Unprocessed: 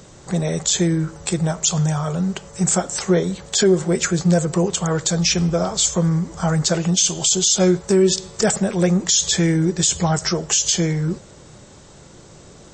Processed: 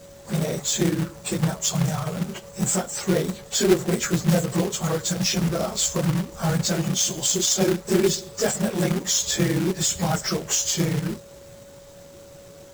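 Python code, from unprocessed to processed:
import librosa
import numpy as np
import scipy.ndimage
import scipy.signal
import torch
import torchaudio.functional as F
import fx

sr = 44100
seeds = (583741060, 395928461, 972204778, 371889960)

y = fx.phase_scramble(x, sr, seeds[0], window_ms=50)
y = y + 10.0 ** (-40.0 / 20.0) * np.sin(2.0 * np.pi * 560.0 * np.arange(len(y)) / sr)
y = fx.quant_companded(y, sr, bits=4)
y = y * 10.0 ** (-5.0 / 20.0)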